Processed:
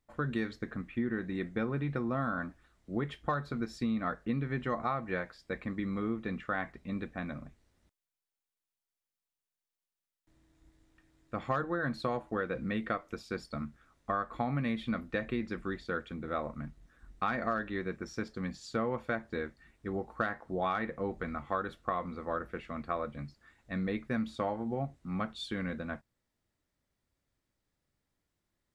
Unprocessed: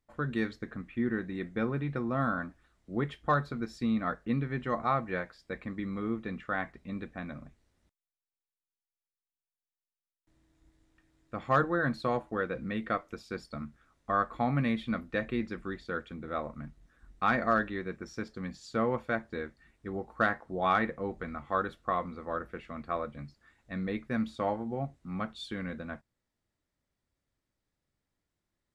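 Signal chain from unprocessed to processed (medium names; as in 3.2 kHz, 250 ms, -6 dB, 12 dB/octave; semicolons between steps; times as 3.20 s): compression 6:1, threshold -30 dBFS, peak gain reduction 9.5 dB; trim +1.5 dB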